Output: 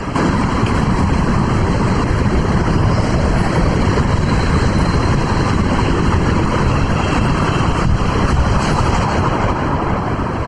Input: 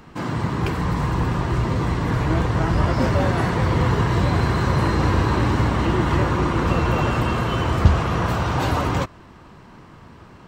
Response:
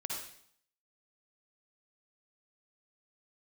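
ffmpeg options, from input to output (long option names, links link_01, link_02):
-filter_complex "[0:a]asplit=2[link_01][link_02];[link_02]adelay=470,lowpass=frequency=2700:poles=1,volume=-5dB,asplit=2[link_03][link_04];[link_04]adelay=470,lowpass=frequency=2700:poles=1,volume=0.46,asplit=2[link_05][link_06];[link_06]adelay=470,lowpass=frequency=2700:poles=1,volume=0.46,asplit=2[link_07][link_08];[link_08]adelay=470,lowpass=frequency=2700:poles=1,volume=0.46,asplit=2[link_09][link_10];[link_10]adelay=470,lowpass=frequency=2700:poles=1,volume=0.46,asplit=2[link_11][link_12];[link_12]adelay=470,lowpass=frequency=2700:poles=1,volume=0.46[link_13];[link_03][link_05][link_07][link_09][link_11][link_13]amix=inputs=6:normalize=0[link_14];[link_01][link_14]amix=inputs=2:normalize=0,acrossover=split=140|3000[link_15][link_16][link_17];[link_16]acompressor=threshold=-24dB:ratio=4[link_18];[link_15][link_18][link_17]amix=inputs=3:normalize=0,asuperstop=centerf=3600:order=12:qfactor=5.2,asplit=2[link_19][link_20];[link_20]adelay=13,volume=-10dB[link_21];[link_19][link_21]amix=inputs=2:normalize=0,aecho=1:1:162|324|486|648|810|972|1134:0.316|0.18|0.103|0.0586|0.0334|0.019|0.0108,asplit=2[link_22][link_23];[1:a]atrim=start_sample=2205,asetrate=29547,aresample=44100[link_24];[link_23][link_24]afir=irnorm=-1:irlink=0,volume=-21.5dB[link_25];[link_22][link_25]amix=inputs=2:normalize=0,acompressor=threshold=-38dB:ratio=3,afftfilt=real='hypot(re,im)*cos(2*PI*random(0))':imag='hypot(re,im)*sin(2*PI*random(1))':win_size=512:overlap=0.75,alimiter=level_in=32dB:limit=-1dB:release=50:level=0:latency=1,volume=-3.5dB" -ar 24000 -c:a libmp3lame -b:a 48k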